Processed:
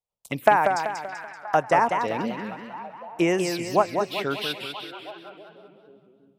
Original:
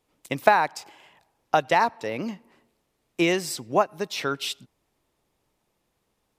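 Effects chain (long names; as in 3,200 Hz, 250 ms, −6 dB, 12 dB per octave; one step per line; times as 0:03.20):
noise gate with hold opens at −48 dBFS
phaser swept by the level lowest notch 300 Hz, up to 4,000 Hz, full sweep at −21 dBFS
echo through a band-pass that steps 325 ms, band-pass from 2,900 Hz, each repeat −0.7 octaves, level −10 dB
feedback echo with a swinging delay time 192 ms, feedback 46%, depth 157 cents, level −6 dB
level +1 dB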